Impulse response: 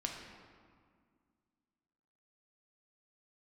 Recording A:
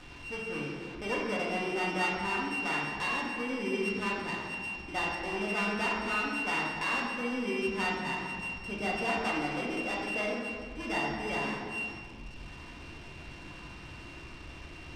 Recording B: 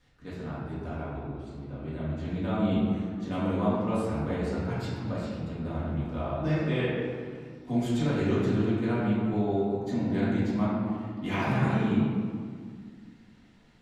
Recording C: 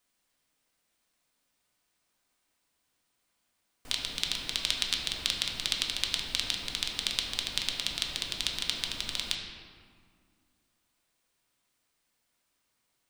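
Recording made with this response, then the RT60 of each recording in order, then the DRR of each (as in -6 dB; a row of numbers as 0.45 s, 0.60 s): C; 2.0 s, 2.0 s, 2.0 s; -4.5 dB, -10.5 dB, 0.5 dB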